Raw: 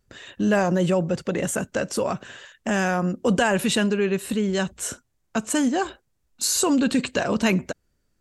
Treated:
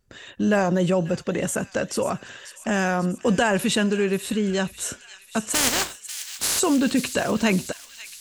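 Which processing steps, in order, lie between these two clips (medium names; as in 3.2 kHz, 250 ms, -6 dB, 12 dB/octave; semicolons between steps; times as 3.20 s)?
5.53–6.58 s: spectral contrast reduction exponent 0.25; on a send: feedback echo behind a high-pass 542 ms, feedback 65%, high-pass 2.5 kHz, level -11 dB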